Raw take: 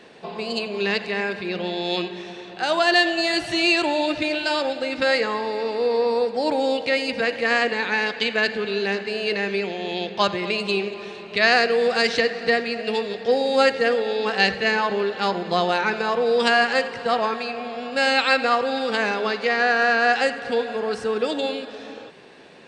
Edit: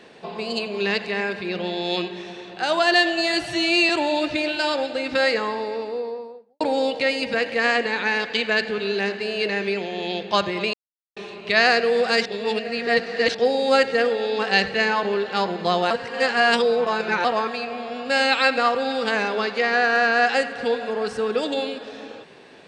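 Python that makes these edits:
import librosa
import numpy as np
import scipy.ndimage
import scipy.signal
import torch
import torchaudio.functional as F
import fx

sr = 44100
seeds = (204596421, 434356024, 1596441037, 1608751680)

y = fx.studio_fade_out(x, sr, start_s=5.23, length_s=1.24)
y = fx.edit(y, sr, fx.stretch_span(start_s=3.49, length_s=0.27, factor=1.5),
    fx.silence(start_s=10.6, length_s=0.43),
    fx.reverse_span(start_s=12.12, length_s=1.09),
    fx.reverse_span(start_s=15.77, length_s=1.34), tone=tone)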